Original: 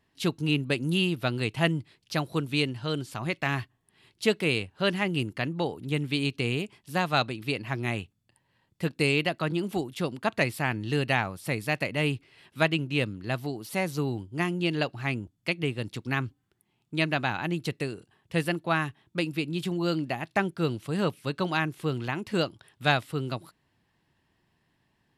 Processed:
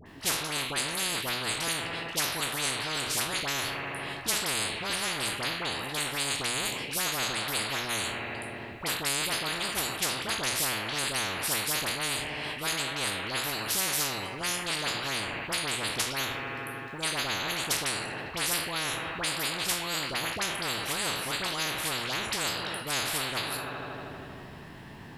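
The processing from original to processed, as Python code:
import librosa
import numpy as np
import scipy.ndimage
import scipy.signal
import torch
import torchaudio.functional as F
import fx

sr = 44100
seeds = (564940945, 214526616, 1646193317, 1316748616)

p1 = fx.spec_trails(x, sr, decay_s=0.31)
p2 = fx.high_shelf(p1, sr, hz=8600.0, db=8.0)
p3 = fx.hum_notches(p2, sr, base_hz=60, count=2)
p4 = fx.rider(p3, sr, range_db=3, speed_s=2.0)
p5 = fx.high_shelf(p4, sr, hz=3900.0, db=-11.0)
p6 = fx.dispersion(p5, sr, late='highs', ms=61.0, hz=1300.0)
p7 = p6 + fx.echo_wet_lowpass(p6, sr, ms=79, feedback_pct=81, hz=3600.0, wet_db=-23.5, dry=0)
p8 = fx.spectral_comp(p7, sr, ratio=10.0)
y = p8 * librosa.db_to_amplitude(-2.5)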